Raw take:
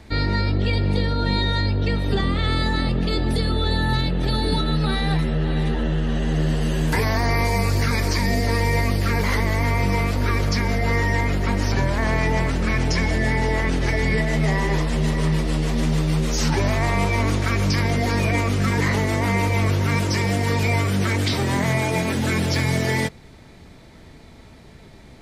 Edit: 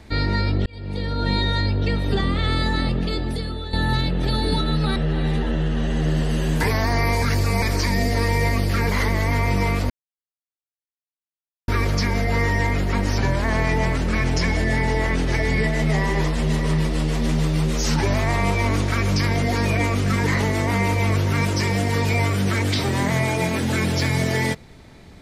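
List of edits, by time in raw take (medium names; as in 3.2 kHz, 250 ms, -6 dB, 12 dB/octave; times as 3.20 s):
0.66–1.29 s: fade in
2.86–3.73 s: fade out linear, to -11.5 dB
4.96–5.28 s: delete
7.54–7.94 s: reverse
10.22 s: insert silence 1.78 s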